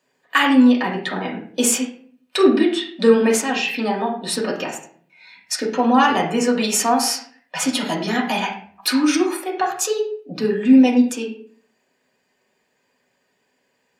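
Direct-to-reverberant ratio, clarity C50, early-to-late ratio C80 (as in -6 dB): -2.5 dB, 7.0 dB, 11.0 dB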